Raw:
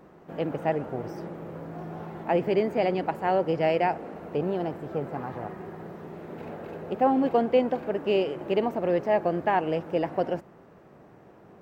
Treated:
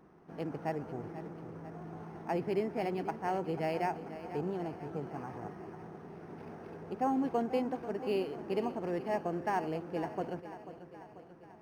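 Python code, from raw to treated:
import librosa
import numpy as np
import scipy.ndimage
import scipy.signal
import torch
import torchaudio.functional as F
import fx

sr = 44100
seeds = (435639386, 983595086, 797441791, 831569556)

y = fx.peak_eq(x, sr, hz=560.0, db=-9.0, octaves=0.33)
y = fx.echo_feedback(y, sr, ms=490, feedback_pct=58, wet_db=-13)
y = np.interp(np.arange(len(y)), np.arange(len(y))[::6], y[::6])
y = y * librosa.db_to_amplitude(-7.0)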